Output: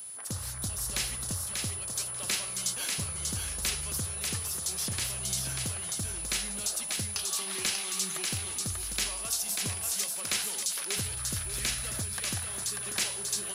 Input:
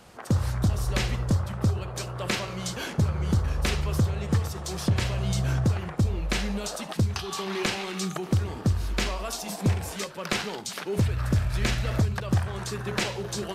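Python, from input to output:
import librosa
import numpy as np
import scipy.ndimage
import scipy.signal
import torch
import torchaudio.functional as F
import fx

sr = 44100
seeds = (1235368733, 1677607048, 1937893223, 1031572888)

y = x + 10.0 ** (-47.0 / 20.0) * np.sin(2.0 * np.pi * 10000.0 * np.arange(len(x)) / sr)
y = librosa.effects.preemphasis(y, coef=0.9, zi=[0.0])
y = fx.echo_thinned(y, sr, ms=590, feedback_pct=18, hz=430.0, wet_db=-3.5)
y = y * 10.0 ** (5.0 / 20.0)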